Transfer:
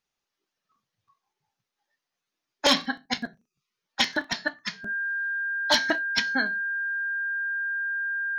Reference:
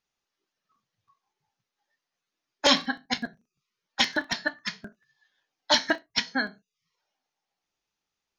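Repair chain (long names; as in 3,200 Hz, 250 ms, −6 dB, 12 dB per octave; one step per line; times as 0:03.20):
clipped peaks rebuilt −11 dBFS
notch filter 1,600 Hz, Q 30
level correction +9 dB, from 0:07.20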